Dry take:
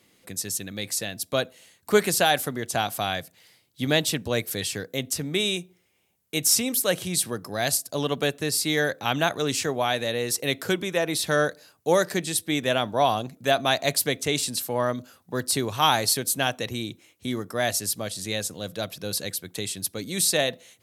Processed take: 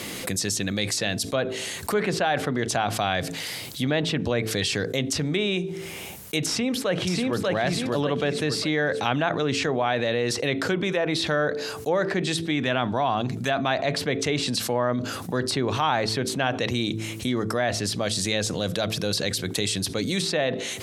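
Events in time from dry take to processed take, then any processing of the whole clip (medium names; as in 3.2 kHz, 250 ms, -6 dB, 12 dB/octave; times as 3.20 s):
6.48–7.48 s: echo throw 590 ms, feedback 30%, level -2 dB
12.51–13.71 s: peaking EQ 520 Hz -6.5 dB
whole clip: de-hum 55.12 Hz, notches 8; low-pass that closes with the level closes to 2.4 kHz, closed at -21 dBFS; level flattener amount 70%; trim -6 dB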